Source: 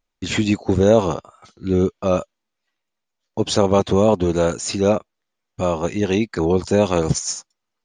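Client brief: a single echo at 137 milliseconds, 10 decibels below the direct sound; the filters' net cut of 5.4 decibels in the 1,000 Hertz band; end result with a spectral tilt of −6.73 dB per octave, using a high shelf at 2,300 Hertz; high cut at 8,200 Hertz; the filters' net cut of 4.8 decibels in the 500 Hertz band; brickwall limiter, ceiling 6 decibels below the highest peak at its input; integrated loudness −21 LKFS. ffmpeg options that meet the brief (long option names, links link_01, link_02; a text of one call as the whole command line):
ffmpeg -i in.wav -af "lowpass=8200,equalizer=frequency=500:width_type=o:gain=-4.5,equalizer=frequency=1000:width_type=o:gain=-4,highshelf=frequency=2300:gain=-8,alimiter=limit=-12dB:level=0:latency=1,aecho=1:1:137:0.316,volume=3.5dB" out.wav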